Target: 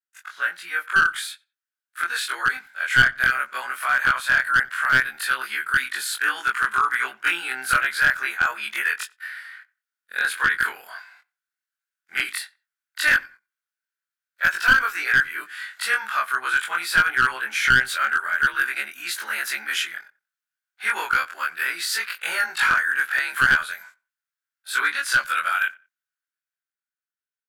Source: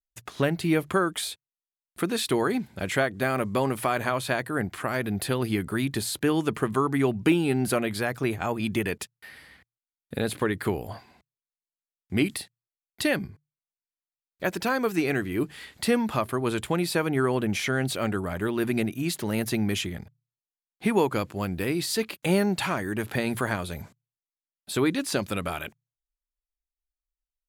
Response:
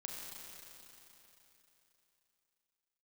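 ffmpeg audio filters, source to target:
-filter_complex "[0:a]afftfilt=real='re':imag='-im':win_size=2048:overlap=0.75,highpass=f=1500:t=q:w=7.6,dynaudnorm=f=190:g=13:m=2.51,aeval=exprs='clip(val(0),-1,0.224)':c=same,asplit=2[s0][s1];[s1]adelay=91,lowpass=f=2400:p=1,volume=0.0708,asplit=2[s2][s3];[s3]adelay=91,lowpass=f=2400:p=1,volume=0.23[s4];[s2][s4]amix=inputs=2:normalize=0[s5];[s0][s5]amix=inputs=2:normalize=0"

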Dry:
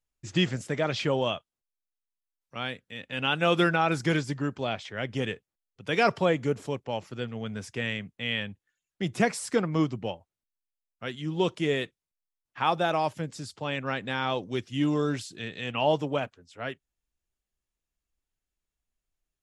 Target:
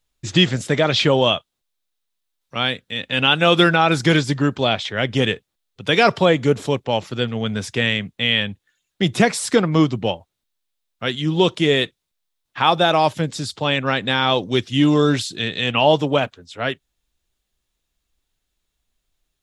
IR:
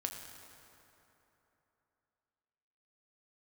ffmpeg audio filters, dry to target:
-filter_complex "[0:a]equalizer=f=3700:w=3:g=7.5,asplit=2[s0][s1];[s1]alimiter=limit=0.133:level=0:latency=1:release=297,volume=1.19[s2];[s0][s2]amix=inputs=2:normalize=0,volume=1.68"

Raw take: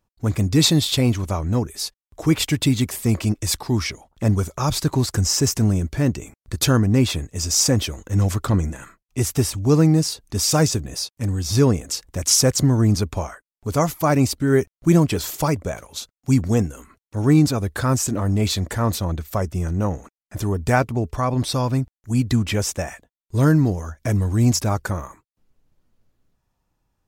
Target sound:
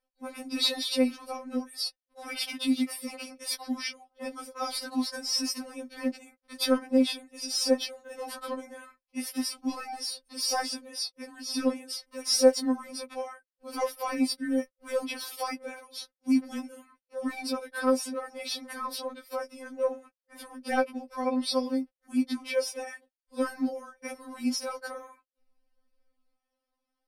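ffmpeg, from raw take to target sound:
-filter_complex "[0:a]asplit=2[s0][s1];[s1]highpass=f=720:p=1,volume=2.82,asoftclip=type=tanh:threshold=0.631[s2];[s0][s2]amix=inputs=2:normalize=0,lowpass=f=3900:p=1,volume=0.501,superequalizer=8b=3.55:14b=1.58:15b=0.316:16b=2,afftfilt=real='re*3.46*eq(mod(b,12),0)':imag='im*3.46*eq(mod(b,12),0)':win_size=2048:overlap=0.75,volume=0.398"

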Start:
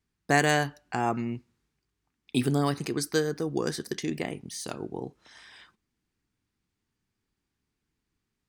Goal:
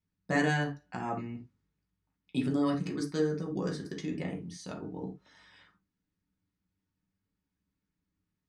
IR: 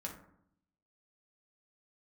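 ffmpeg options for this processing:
-filter_complex "[0:a]lowpass=6700,lowshelf=f=370:g=4.5[s0];[1:a]atrim=start_sample=2205,atrim=end_sample=3969[s1];[s0][s1]afir=irnorm=-1:irlink=0,volume=0.531"

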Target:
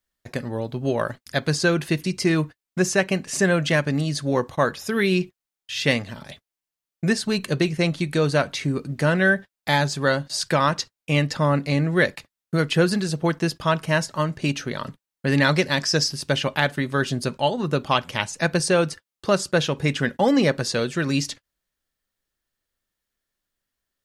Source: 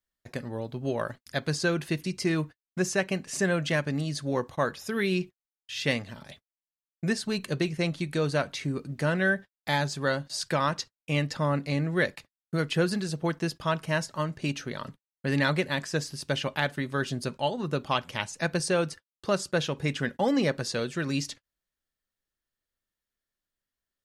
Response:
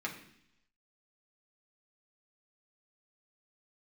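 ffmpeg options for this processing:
-filter_complex "[0:a]asettb=1/sr,asplit=3[s0][s1][s2];[s0]atrim=end=15.494[s3];[s1]atrim=start=15.49:end=16.12,asetpts=PTS-STARTPTS,afade=t=in:d=0.004:c=qsin,afade=t=out:st=0.626:d=0.004:c=qsin,equalizer=f=5300:w=3.4:g=14[s4];[s2]atrim=start=16.116[s5];[s3][s4]acrossfade=d=0.004:c1=hsin:c2=qsin[s6];[s6][s5]acrossfade=d=0.004:c1=qsin:c2=hsin,volume=2.11"

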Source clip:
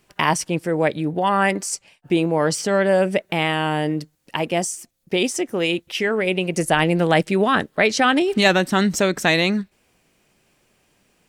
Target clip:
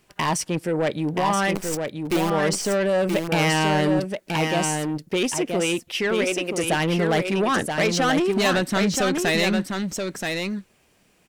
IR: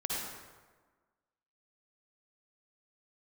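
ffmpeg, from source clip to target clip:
-filter_complex "[0:a]asettb=1/sr,asplit=3[s0][s1][s2];[s0]atrim=end=1.554[s3];[s1]atrim=start=1.55:end=2.3,asetpts=PTS-STARTPTS,afade=t=in:d=0.004:c=qsin,afade=t=out:st=0.746:d=0.004:c=qsin,acrusher=bits=4:dc=4:mix=0:aa=0.000001[s4];[s2]atrim=start=2.296[s5];[s3][s4]acrossfade=d=0.004:c1=hsin:c2=qsin[s6];[s6][s5]acrossfade=d=0.004:c1=qsin:c2=hsin,asettb=1/sr,asplit=3[s7][s8][s9];[s7]atrim=end=3.314[s10];[s8]atrim=start=3.31:end=4,asetpts=PTS-STARTPTS,afade=t=in:d=0.004:c=qsin,afade=t=out:st=0.686:d=0.004:c=qsin,acontrast=71[s11];[s9]atrim=start=3.996[s12];[s10][s11]acrossfade=d=0.004:c1=hsin:c2=qsin[s13];[s13][s12]acrossfade=d=0.004:c1=qsin:c2=hsin,asettb=1/sr,asplit=3[s14][s15][s16];[s14]atrim=end=6.244[s17];[s15]atrim=start=6.24:end=6.64,asetpts=PTS-STARTPTS,afade=t=in:d=0.004:c=qsin,afade=t=out:st=0.396:d=0.004:c=qsin,highpass=330[s18];[s16]atrim=start=6.636[s19];[s17][s18]acrossfade=d=0.004:c1=hsin:c2=qsin[s20];[s20][s19]acrossfade=d=0.004:c1=qsin:c2=hsin,asoftclip=type=tanh:threshold=0.15,aecho=1:1:978:0.562"

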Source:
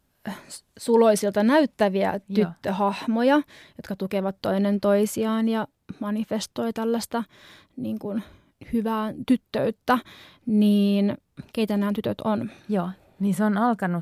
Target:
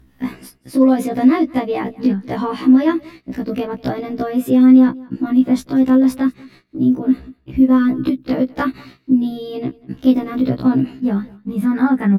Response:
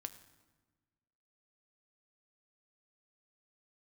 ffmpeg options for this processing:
-af "agate=range=0.0562:threshold=0.00447:ratio=16:detection=peak,acompressor=mode=upward:threshold=0.0112:ratio=2.5,bass=f=250:g=8,treble=f=4000:g=-12,acompressor=threshold=0.112:ratio=4,equalizer=f=250:t=o:w=0.67:g=6,equalizer=f=630:t=o:w=0.67:g=-5,equalizer=f=10000:t=o:w=0.67:g=8,asetrate=50715,aresample=44100,aecho=1:1:191:0.0708,afftfilt=real='re*1.73*eq(mod(b,3),0)':imag='im*1.73*eq(mod(b,3),0)':win_size=2048:overlap=0.75,volume=2.24"

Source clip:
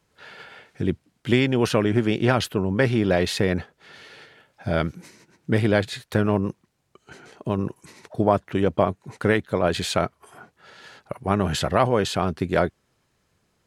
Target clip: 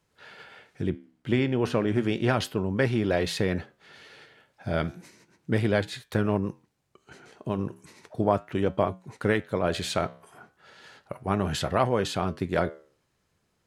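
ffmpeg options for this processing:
-filter_complex "[0:a]asettb=1/sr,asplit=3[s0][s1][s2];[s0]atrim=end=0.894[s3];[s1]atrim=start=0.89:end=1.88,asetpts=PTS-STARTPTS,afade=t=in:d=0.004:c=qsin,afade=t=out:st=0.986:d=0.004:c=qsin,highshelf=f=3000:g=-9[s4];[s2]atrim=start=1.876[s5];[s3][s4]acrossfade=d=0.004:c1=hsin:c2=qsin[s6];[s6][s5]acrossfade=d=0.004:c1=qsin:c2=hsin,flanger=delay=7.9:depth=7:regen=-81:speed=0.34:shape=sinusoidal"

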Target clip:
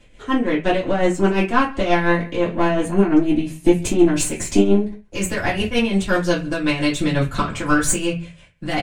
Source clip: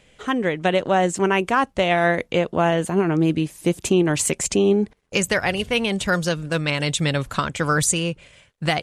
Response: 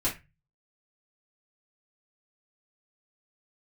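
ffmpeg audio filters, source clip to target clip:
-filter_complex "[0:a]aeval=exprs='(tanh(3.55*val(0)+0.35)-tanh(0.35))/3.55':c=same,aecho=1:1:135:0.075,tremolo=f=5.7:d=0.65[s0];[1:a]atrim=start_sample=2205[s1];[s0][s1]afir=irnorm=-1:irlink=0,volume=0.708"

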